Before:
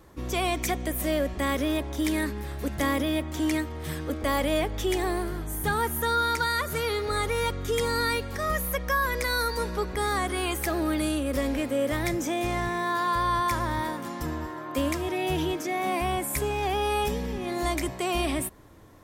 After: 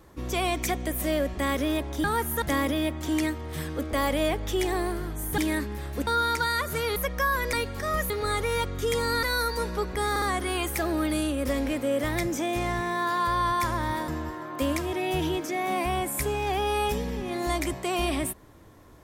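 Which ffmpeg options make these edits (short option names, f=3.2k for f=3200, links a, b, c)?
-filter_complex "[0:a]asplit=12[a][b][c][d][e][f][g][h][i][j][k][l];[a]atrim=end=2.042[m];[b]atrim=start=5.688:end=6.072[n];[c]atrim=start=2.728:end=5.692[o];[d]atrim=start=2.038:end=2.732[p];[e]atrim=start=6.068:end=6.962[q];[f]atrim=start=8.658:end=9.232[r];[g]atrim=start=8.088:end=8.662[s];[h]atrim=start=6.958:end=8.092[t];[i]atrim=start=9.228:end=10.162[u];[j]atrim=start=10.098:end=10.162[v];[k]atrim=start=10.098:end=13.962[w];[l]atrim=start=14.238[x];[m][n]acrossfade=d=0.004:c1=hsin:c2=hsin[y];[y][o]acrossfade=d=0.004:c1=hsin:c2=hsin[z];[z][p]acrossfade=d=0.004:c1=hsin:c2=hsin[aa];[aa][q]acrossfade=d=0.004:c1=hsin:c2=hsin[ab];[ab][r]acrossfade=d=0.004:c1=hsin:c2=hsin[ac];[ac][s]acrossfade=d=0.004:c1=hsin:c2=hsin[ad];[ad][t]acrossfade=d=0.004:c1=hsin:c2=hsin[ae];[ae][u]acrossfade=d=0.004:c1=hsin:c2=hsin[af];[af][v]acrossfade=d=0.004:c1=hsin:c2=hsin[ag];[ag][w]acrossfade=d=0.004:c1=hsin:c2=hsin[ah];[ah][x]acrossfade=d=0.004:c1=hsin:c2=hsin"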